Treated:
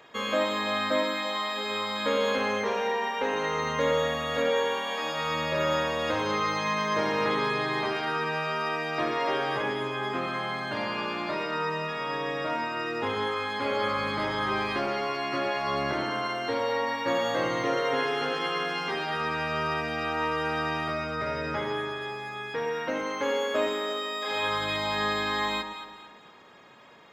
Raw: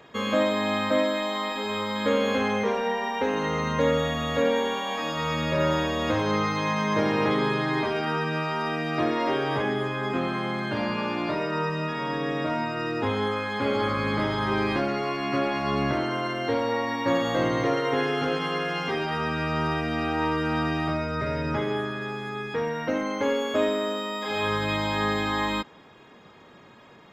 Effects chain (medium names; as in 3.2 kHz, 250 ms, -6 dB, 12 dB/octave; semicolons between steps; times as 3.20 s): bass shelf 330 Hz -11.5 dB; echo whose repeats swap between lows and highs 113 ms, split 980 Hz, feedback 62%, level -7 dB